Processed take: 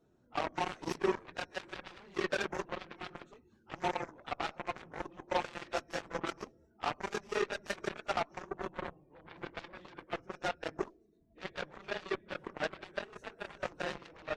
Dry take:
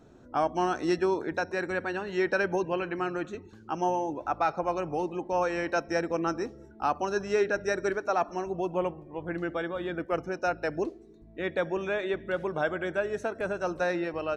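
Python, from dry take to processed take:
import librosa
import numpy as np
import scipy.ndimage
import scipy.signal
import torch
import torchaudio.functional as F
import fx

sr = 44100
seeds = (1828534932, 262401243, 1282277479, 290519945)

y = fx.phase_scramble(x, sr, seeds[0], window_ms=50)
y = fx.cheby_harmonics(y, sr, harmonics=(2, 4, 5, 7), levels_db=(-7, -15, -28, -13), full_scale_db=-13.5)
y = y * 10.0 ** (-7.0 / 20.0)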